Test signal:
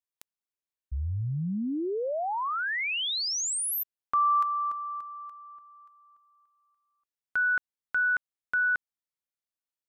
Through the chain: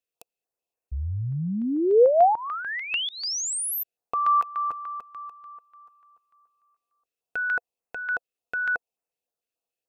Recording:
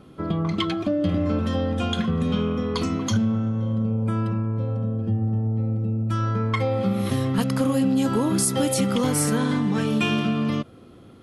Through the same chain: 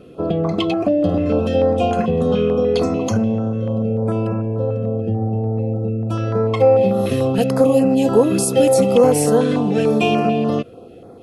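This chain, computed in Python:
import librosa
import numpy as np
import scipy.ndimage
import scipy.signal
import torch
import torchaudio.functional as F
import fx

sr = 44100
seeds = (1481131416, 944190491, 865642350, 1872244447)

y = fx.small_body(x, sr, hz=(490.0, 690.0, 2600.0), ring_ms=25, db=15)
y = fx.filter_held_notch(y, sr, hz=6.8, low_hz=860.0, high_hz=3500.0)
y = y * 10.0 ** (1.5 / 20.0)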